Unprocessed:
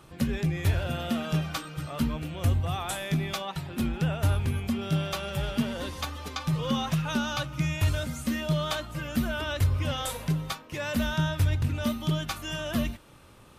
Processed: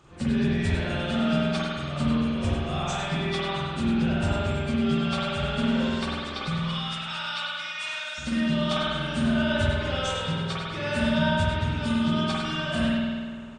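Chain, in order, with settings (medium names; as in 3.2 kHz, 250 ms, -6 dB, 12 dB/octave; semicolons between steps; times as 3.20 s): knee-point frequency compression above 3.9 kHz 1.5:1; 6.54–8.18 s: high-pass 1.3 kHz 12 dB/octave; on a send: delay 101 ms -8 dB; on the sum: spring tank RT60 1.8 s, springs 48 ms, chirp 50 ms, DRR -6.5 dB; dynamic bell 4.4 kHz, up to +5 dB, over -47 dBFS, Q 1.5; trim -4 dB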